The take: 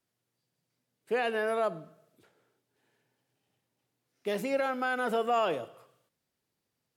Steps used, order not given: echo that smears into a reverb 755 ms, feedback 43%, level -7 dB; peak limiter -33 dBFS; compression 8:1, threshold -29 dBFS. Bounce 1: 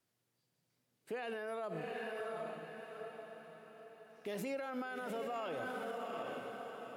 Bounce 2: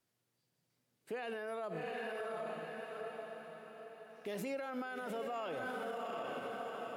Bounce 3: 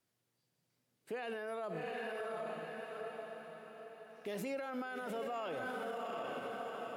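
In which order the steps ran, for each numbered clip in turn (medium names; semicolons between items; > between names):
compression > echo that smears into a reverb > peak limiter; echo that smears into a reverb > compression > peak limiter; echo that smears into a reverb > peak limiter > compression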